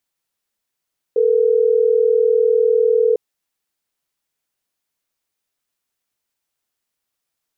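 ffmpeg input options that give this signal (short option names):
-f lavfi -i "aevalsrc='0.188*(sin(2*PI*440*t)+sin(2*PI*480*t))*clip(min(mod(t,6),2-mod(t,6))/0.005,0,1)':d=3.12:s=44100"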